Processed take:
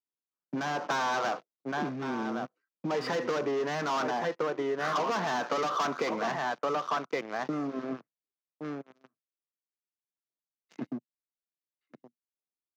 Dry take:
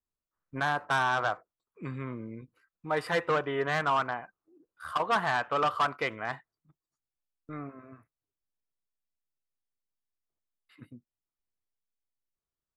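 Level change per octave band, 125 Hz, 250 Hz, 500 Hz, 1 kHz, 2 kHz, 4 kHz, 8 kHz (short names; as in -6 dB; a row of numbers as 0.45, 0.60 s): -2.5, +6.5, +2.5, -0.5, -3.0, +1.0, +6.5 dB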